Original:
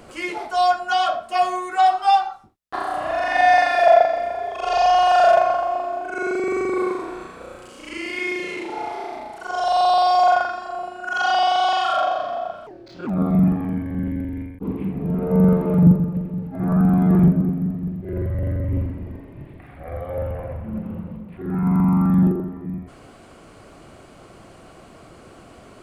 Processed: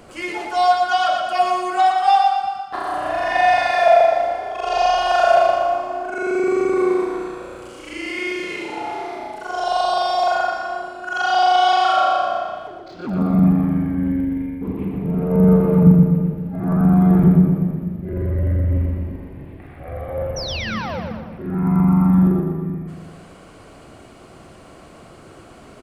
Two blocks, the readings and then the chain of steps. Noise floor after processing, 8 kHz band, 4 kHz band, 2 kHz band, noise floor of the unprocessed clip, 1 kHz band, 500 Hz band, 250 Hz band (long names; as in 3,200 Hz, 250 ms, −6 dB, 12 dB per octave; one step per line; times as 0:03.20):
−43 dBFS, can't be measured, +2.0 dB, +1.0 dB, −46 dBFS, +1.0 dB, +2.0 dB, +3.0 dB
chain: sound drawn into the spectrogram fall, 0:20.36–0:21.00, 460–6,100 Hz −30 dBFS
repeating echo 118 ms, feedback 48%, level −4 dB
reverb whose tail is shaped and stops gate 450 ms flat, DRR 11.5 dB